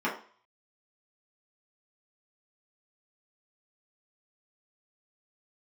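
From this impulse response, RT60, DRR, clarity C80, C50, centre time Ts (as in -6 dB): 0.45 s, -7.0 dB, 12.5 dB, 8.0 dB, 25 ms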